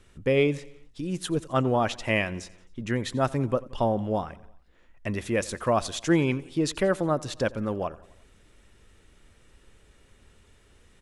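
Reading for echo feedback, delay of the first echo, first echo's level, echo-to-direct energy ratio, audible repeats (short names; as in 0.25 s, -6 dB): 57%, 88 ms, -21.5 dB, -20.0 dB, 3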